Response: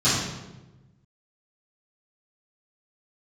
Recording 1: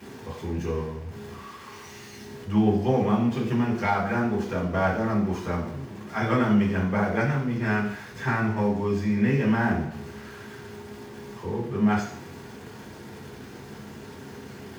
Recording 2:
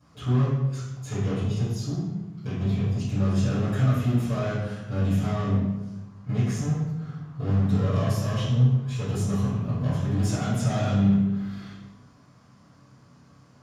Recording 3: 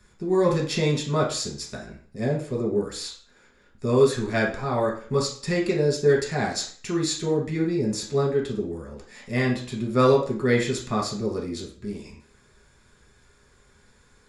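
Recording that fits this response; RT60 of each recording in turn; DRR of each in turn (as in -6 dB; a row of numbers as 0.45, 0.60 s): 2; 0.70, 1.1, 0.45 s; -4.0, -15.5, -3.0 dB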